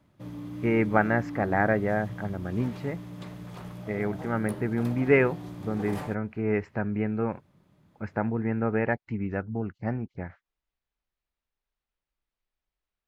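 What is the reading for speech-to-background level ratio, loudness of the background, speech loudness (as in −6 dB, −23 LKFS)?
11.0 dB, −39.5 LKFS, −28.5 LKFS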